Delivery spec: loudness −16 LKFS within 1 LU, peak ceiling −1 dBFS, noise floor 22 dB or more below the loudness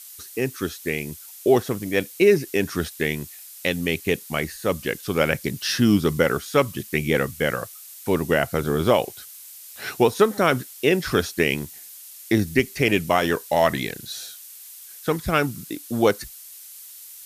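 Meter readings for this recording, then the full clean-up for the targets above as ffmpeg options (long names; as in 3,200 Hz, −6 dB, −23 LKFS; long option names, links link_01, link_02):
background noise floor −43 dBFS; target noise floor −45 dBFS; integrated loudness −23.0 LKFS; sample peak −4.0 dBFS; target loudness −16.0 LKFS
→ -af "afftdn=noise_reduction=6:noise_floor=-43"
-af "volume=7dB,alimiter=limit=-1dB:level=0:latency=1"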